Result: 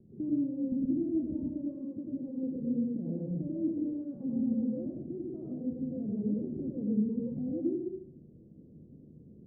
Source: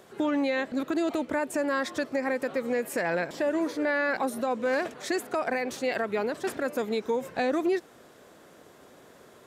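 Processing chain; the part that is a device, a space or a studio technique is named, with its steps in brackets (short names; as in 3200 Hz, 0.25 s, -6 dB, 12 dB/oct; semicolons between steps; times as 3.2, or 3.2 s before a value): 1.41–2.47 HPF 240 Hz 6 dB/oct; club heard from the street (limiter -23 dBFS, peak gain reduction 6.5 dB; LPF 240 Hz 24 dB/oct; reverb RT60 0.60 s, pre-delay 85 ms, DRR -1.5 dB); gain +6 dB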